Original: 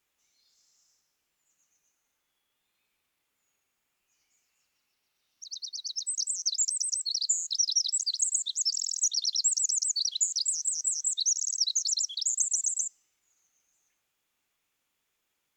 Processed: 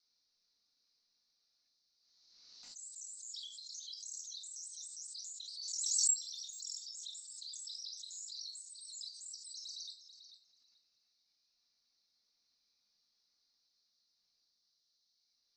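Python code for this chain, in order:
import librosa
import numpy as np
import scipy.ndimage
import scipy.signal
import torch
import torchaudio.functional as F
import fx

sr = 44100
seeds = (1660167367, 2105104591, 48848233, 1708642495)

y = x[::-1].copy()
y = fx.peak_eq(y, sr, hz=13000.0, db=11.0, octaves=0.34)
y = fx.auto_swell(y, sr, attack_ms=363.0)
y = fx.level_steps(y, sr, step_db=22)
y = fx.dmg_noise_band(y, sr, seeds[0], low_hz=4000.0, high_hz=6100.0, level_db=-69.0)
y = fx.env_lowpass(y, sr, base_hz=2800.0, full_db=-37.0)
y = fx.echo_tape(y, sr, ms=437, feedback_pct=40, wet_db=-5.0, lp_hz=2500.0, drive_db=32.0, wow_cents=33)
y = fx.room_shoebox(y, sr, seeds[1], volume_m3=350.0, walls='furnished', distance_m=1.8)
y = fx.pre_swell(y, sr, db_per_s=35.0)
y = F.gain(torch.from_numpy(y), -4.0).numpy()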